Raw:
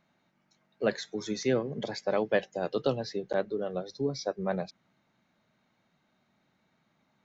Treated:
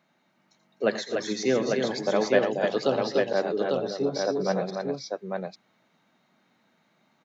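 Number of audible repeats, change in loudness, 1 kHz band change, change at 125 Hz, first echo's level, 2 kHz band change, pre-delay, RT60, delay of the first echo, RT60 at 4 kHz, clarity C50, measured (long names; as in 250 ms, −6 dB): 5, +5.0 dB, +6.0 dB, +1.5 dB, −10.5 dB, +6.0 dB, no reverb audible, no reverb audible, 84 ms, no reverb audible, no reverb audible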